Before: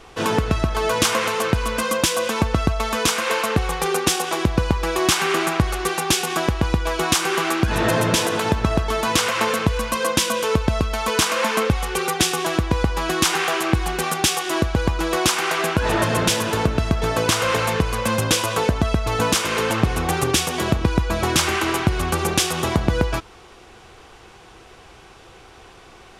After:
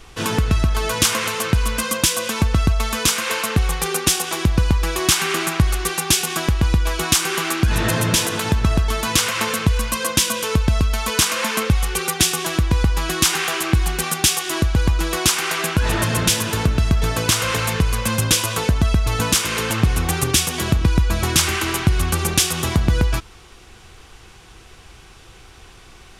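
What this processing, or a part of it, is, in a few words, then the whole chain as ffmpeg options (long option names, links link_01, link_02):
smiley-face EQ: -af "lowshelf=frequency=85:gain=7,equalizer=frequency=600:width_type=o:width=2.1:gain=-7,highshelf=frequency=7400:gain=6,volume=1.5dB"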